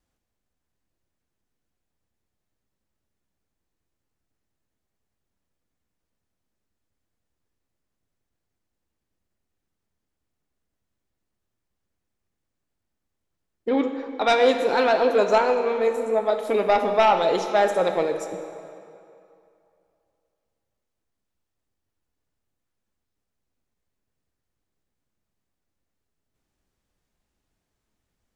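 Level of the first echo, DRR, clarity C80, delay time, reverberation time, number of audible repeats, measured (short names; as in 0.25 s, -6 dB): none, 5.5 dB, 8.0 dB, none, 2.6 s, none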